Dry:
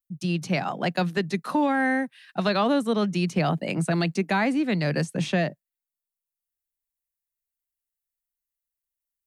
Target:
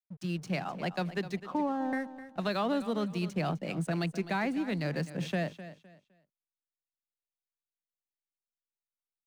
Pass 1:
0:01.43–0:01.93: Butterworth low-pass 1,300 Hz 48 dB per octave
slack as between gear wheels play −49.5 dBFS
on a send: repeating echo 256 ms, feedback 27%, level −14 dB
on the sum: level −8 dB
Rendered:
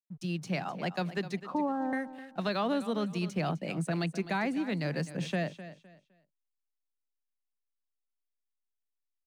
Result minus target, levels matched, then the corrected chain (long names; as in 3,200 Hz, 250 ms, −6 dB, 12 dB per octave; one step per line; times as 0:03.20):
slack as between gear wheels: distortion −11 dB
0:01.43–0:01.93: Butterworth low-pass 1,300 Hz 48 dB per octave
slack as between gear wheels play −37.5 dBFS
on a send: repeating echo 256 ms, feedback 27%, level −14 dB
on the sum: level −8 dB